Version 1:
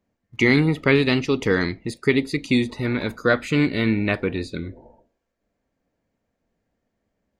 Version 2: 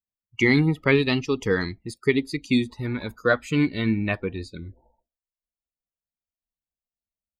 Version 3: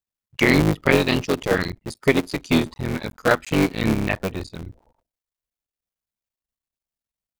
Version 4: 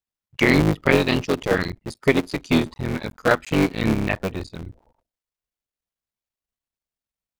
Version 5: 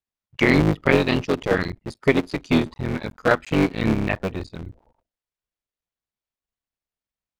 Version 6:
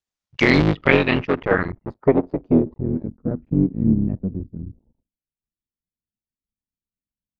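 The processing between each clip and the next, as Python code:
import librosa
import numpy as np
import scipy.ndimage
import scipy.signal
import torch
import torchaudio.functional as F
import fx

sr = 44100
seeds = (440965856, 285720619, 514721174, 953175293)

y1 = fx.bin_expand(x, sr, power=1.5)
y2 = fx.cycle_switch(y1, sr, every=3, mode='muted')
y2 = F.gain(torch.from_numpy(y2), 4.0).numpy()
y3 = fx.high_shelf(y2, sr, hz=6500.0, db=-5.0)
y4 = fx.high_shelf(y3, sr, hz=6600.0, db=-10.0)
y5 = fx.filter_sweep_lowpass(y4, sr, from_hz=6800.0, to_hz=230.0, start_s=0.18, end_s=3.26, q=1.6)
y5 = F.gain(torch.from_numpy(y5), 1.0).numpy()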